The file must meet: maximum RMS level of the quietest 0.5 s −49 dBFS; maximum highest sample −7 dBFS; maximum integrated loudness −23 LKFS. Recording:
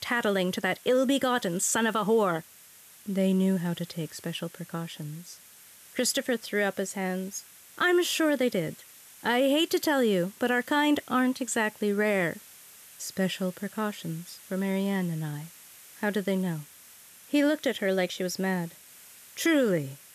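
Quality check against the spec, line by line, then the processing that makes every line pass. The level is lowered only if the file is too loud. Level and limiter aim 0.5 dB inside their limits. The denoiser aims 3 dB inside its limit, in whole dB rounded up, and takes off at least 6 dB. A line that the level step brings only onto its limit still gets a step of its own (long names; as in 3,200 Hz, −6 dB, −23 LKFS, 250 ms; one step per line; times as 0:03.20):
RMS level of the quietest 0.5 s −53 dBFS: in spec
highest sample −14.5 dBFS: in spec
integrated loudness −28.0 LKFS: in spec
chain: no processing needed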